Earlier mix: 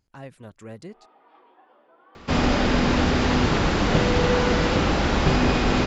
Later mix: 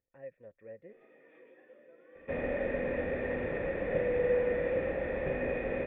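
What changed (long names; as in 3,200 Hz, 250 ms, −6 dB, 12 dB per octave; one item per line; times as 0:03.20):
first sound: remove resonant band-pass 820 Hz, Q 2.8
master: add formant resonators in series e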